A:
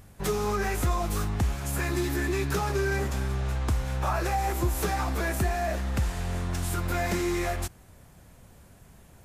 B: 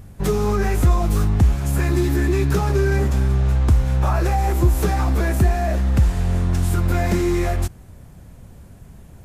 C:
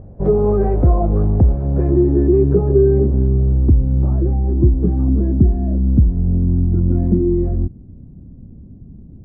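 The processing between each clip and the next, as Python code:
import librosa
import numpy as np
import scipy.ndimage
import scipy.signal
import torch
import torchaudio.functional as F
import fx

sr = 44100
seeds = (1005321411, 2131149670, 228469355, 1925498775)

y1 = fx.low_shelf(x, sr, hz=420.0, db=10.0)
y1 = y1 * librosa.db_to_amplitude(2.0)
y2 = fx.filter_sweep_lowpass(y1, sr, from_hz=580.0, to_hz=270.0, start_s=1.05, end_s=4.4, q=2.2)
y2 = y2 * librosa.db_to_amplitude(2.5)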